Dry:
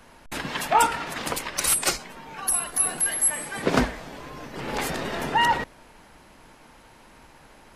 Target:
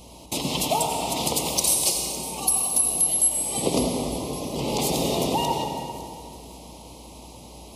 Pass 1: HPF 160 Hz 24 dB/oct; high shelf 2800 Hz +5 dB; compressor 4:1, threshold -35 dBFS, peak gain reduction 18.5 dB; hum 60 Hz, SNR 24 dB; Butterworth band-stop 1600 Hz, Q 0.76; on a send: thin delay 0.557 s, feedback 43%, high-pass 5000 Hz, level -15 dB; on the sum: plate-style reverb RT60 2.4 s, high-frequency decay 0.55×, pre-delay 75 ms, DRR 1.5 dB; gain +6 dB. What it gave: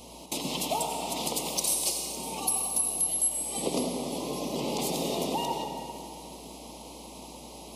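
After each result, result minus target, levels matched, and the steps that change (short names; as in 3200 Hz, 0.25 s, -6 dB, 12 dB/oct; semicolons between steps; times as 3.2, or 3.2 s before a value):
compressor: peak gain reduction +6.5 dB; 125 Hz band -3.0 dB
change: compressor 4:1, threshold -26.5 dBFS, peak gain reduction 12 dB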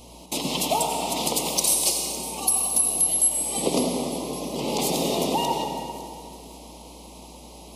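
125 Hz band -4.0 dB
change: HPF 58 Hz 24 dB/oct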